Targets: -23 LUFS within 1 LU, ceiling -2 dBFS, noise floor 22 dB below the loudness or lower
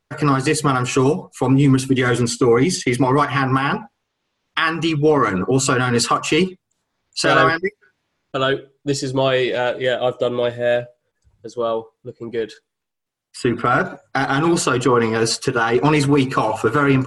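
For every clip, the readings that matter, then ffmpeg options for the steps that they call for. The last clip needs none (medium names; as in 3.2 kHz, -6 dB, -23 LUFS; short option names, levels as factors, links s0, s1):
loudness -18.5 LUFS; peak level -2.0 dBFS; loudness target -23.0 LUFS
-> -af "volume=0.596"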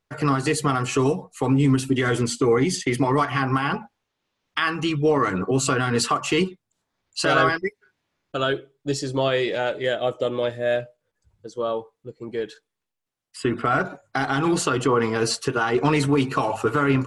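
loudness -23.0 LUFS; peak level -6.5 dBFS; noise floor -81 dBFS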